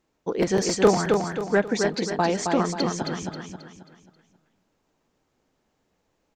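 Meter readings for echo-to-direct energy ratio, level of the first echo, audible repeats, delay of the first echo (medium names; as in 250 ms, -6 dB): -3.5 dB, -4.5 dB, 4, 268 ms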